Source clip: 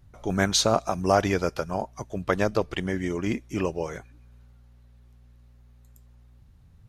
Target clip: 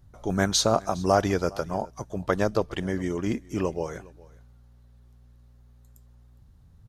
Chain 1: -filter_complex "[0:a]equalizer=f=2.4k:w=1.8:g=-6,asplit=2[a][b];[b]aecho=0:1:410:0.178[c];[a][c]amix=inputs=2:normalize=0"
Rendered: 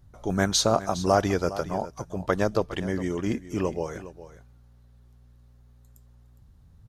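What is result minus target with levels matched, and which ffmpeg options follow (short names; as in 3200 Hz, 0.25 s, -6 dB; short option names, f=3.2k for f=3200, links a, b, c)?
echo-to-direct +8 dB
-filter_complex "[0:a]equalizer=f=2.4k:w=1.8:g=-6,asplit=2[a][b];[b]aecho=0:1:410:0.0708[c];[a][c]amix=inputs=2:normalize=0"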